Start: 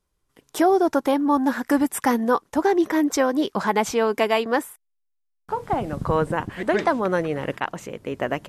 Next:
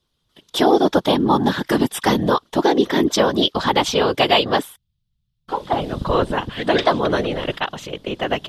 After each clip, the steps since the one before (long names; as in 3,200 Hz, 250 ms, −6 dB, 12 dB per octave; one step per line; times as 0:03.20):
drawn EQ curve 2,300 Hz 0 dB, 3,400 Hz +15 dB, 7,300 Hz −3 dB
random phases in short frames
level +3 dB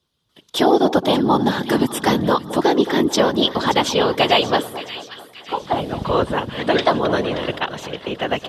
high-pass filter 68 Hz
echo with a time of its own for lows and highs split 1,300 Hz, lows 218 ms, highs 577 ms, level −13 dB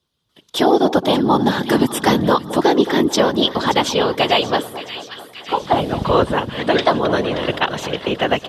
automatic gain control
level −1 dB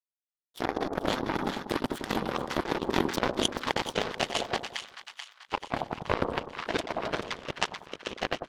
power curve on the samples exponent 3
echo with a time of its own for lows and highs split 1,100 Hz, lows 95 ms, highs 435 ms, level −12 dB
compressor whose output falls as the input rises −27 dBFS, ratio −0.5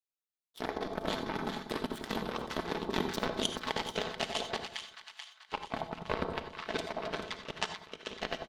parametric band 3,800 Hz +3 dB 0.55 octaves
comb filter 4.6 ms, depth 34%
reverb whose tail is shaped and stops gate 110 ms rising, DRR 10 dB
level −6.5 dB